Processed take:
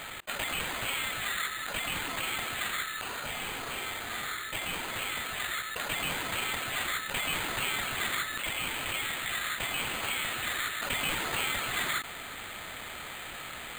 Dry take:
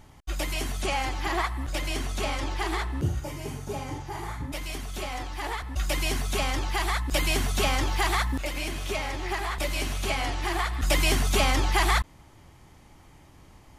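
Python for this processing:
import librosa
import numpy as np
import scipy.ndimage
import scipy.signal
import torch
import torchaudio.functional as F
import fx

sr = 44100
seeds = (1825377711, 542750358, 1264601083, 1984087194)

y = fx.brickwall_bandpass(x, sr, low_hz=1200.0, high_hz=12000.0)
y = np.repeat(y[::8], 8)[:len(y)]
y = fx.env_flatten(y, sr, amount_pct=70)
y = F.gain(torch.from_numpy(y), -5.5).numpy()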